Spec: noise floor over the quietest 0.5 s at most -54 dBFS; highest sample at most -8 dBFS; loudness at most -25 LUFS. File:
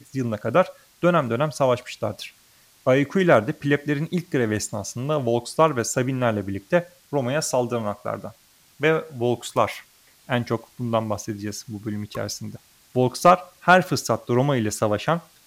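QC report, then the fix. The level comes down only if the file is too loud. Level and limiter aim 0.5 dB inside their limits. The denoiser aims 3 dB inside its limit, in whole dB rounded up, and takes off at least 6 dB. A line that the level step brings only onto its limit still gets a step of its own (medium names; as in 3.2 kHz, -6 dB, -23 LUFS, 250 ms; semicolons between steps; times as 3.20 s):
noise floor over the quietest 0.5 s -56 dBFS: pass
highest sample -4.0 dBFS: fail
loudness -23.0 LUFS: fail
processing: trim -2.5 dB; peak limiter -8.5 dBFS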